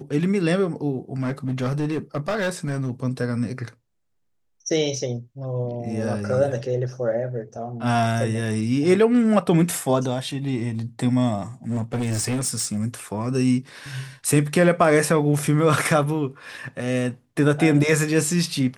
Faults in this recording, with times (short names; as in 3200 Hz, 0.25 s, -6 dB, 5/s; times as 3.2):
1.2–2.9 clipped -19.5 dBFS
11.69–12.79 clipped -20.5 dBFS